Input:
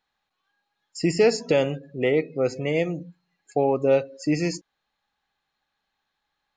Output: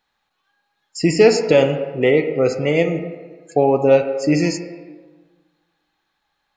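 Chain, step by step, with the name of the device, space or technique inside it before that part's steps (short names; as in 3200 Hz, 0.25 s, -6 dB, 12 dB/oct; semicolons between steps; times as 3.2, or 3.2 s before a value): filtered reverb send (on a send: HPF 250 Hz 12 dB/oct + LPF 3200 Hz 12 dB/oct + reverb RT60 1.4 s, pre-delay 6 ms, DRR 6 dB); on the sum: gain +6 dB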